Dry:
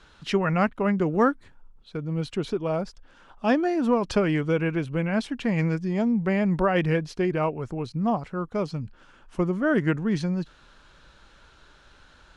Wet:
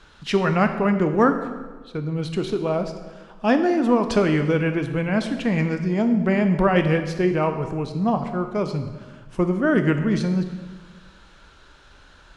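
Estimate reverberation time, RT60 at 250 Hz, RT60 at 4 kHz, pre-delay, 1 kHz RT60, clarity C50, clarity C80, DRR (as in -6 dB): 1.4 s, 1.4 s, 1.1 s, 15 ms, 1.3 s, 9.0 dB, 10.5 dB, 7.0 dB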